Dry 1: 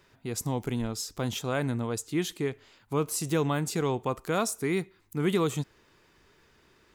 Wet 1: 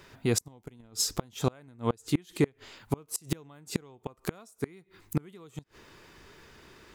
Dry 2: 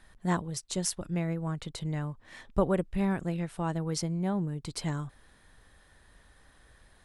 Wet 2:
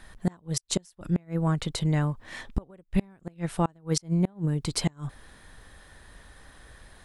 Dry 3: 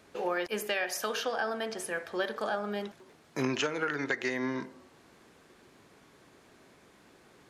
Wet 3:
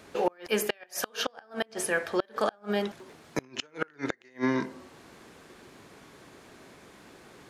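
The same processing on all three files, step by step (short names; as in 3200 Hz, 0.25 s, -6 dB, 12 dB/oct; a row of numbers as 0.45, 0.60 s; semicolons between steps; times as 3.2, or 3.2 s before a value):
flipped gate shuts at -21 dBFS, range -32 dB; normalise peaks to -12 dBFS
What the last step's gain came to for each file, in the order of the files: +8.5, +8.5, +7.0 dB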